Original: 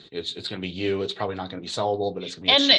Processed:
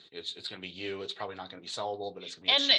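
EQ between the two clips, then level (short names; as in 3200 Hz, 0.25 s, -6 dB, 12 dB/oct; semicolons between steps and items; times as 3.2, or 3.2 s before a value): low shelf 460 Hz -11 dB; -6.0 dB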